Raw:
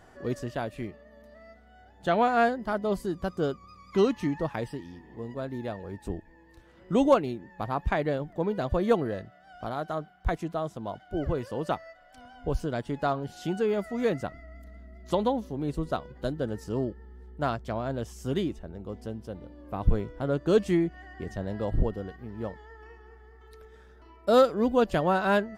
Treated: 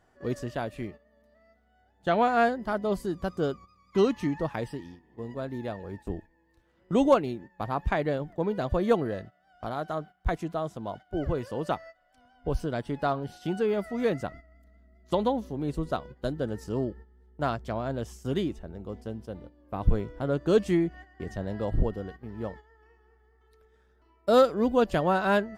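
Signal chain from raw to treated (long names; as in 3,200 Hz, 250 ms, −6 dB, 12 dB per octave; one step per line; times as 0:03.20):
noise gate −43 dBFS, range −11 dB
0:12.32–0:14.12: notch filter 6,900 Hz, Q 7.9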